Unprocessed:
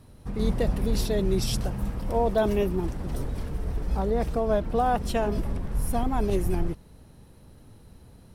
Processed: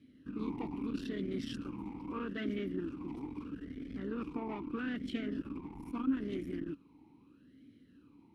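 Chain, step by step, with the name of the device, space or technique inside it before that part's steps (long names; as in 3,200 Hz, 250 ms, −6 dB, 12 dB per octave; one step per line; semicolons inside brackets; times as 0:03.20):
talk box (tube saturation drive 25 dB, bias 0.6; formant filter swept between two vowels i-u 0.78 Hz)
level +8 dB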